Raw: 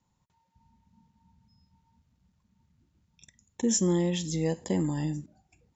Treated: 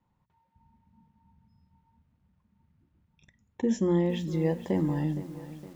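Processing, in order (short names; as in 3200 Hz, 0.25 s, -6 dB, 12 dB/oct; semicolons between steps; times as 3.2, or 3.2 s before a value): LPF 2300 Hz 12 dB/oct; notches 60/120/180/240 Hz; lo-fi delay 0.464 s, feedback 55%, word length 8-bit, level -14 dB; gain +1.5 dB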